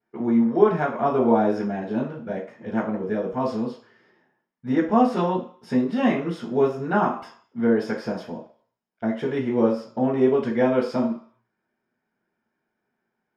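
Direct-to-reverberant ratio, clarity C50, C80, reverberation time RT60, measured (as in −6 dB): −12.0 dB, 8.0 dB, 12.0 dB, 0.50 s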